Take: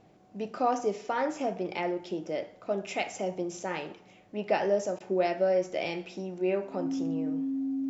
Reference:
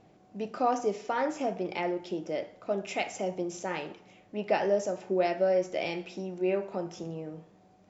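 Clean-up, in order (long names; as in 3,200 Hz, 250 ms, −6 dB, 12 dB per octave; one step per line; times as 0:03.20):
notch filter 270 Hz, Q 30
repair the gap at 0:04.99, 11 ms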